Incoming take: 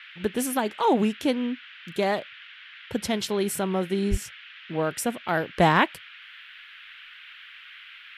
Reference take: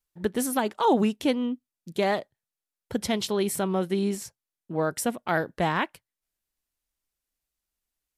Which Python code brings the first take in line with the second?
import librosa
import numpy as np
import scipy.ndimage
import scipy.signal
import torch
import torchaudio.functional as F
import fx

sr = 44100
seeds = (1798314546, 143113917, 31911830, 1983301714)

y = fx.fix_deplosive(x, sr, at_s=(4.1,))
y = fx.noise_reduce(y, sr, print_start_s=6.4, print_end_s=6.9, reduce_db=30.0)
y = fx.fix_level(y, sr, at_s=5.55, step_db=-6.5)